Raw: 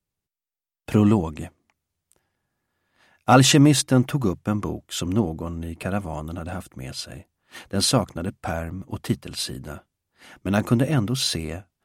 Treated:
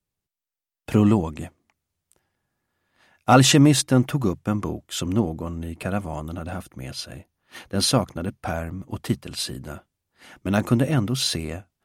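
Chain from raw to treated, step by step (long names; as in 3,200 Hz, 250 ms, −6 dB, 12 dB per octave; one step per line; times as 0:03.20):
0:06.30–0:08.56: notch filter 7,700 Hz, Q 6.4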